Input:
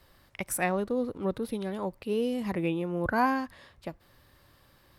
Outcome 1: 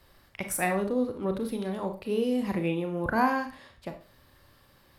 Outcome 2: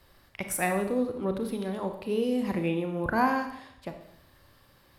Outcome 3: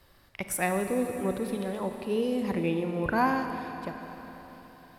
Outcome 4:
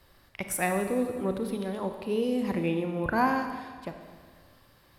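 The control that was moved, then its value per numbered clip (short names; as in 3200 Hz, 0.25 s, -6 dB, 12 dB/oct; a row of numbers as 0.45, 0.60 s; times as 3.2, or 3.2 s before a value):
Schroeder reverb, RT60: 0.35, 0.77, 4.2, 1.7 s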